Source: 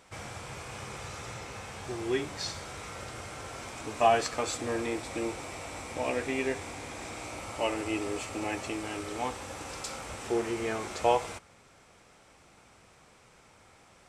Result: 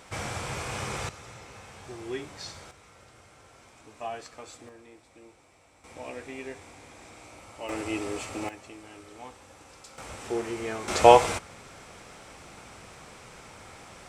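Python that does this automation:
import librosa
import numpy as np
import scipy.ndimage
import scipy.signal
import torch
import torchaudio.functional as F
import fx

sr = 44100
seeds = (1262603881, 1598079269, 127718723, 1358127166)

y = fx.gain(x, sr, db=fx.steps((0.0, 7.5), (1.09, -5.0), (2.71, -13.0), (4.69, -19.5), (5.84, -8.5), (7.69, 0.5), (8.49, -11.0), (9.98, -1.0), (10.88, 10.5)))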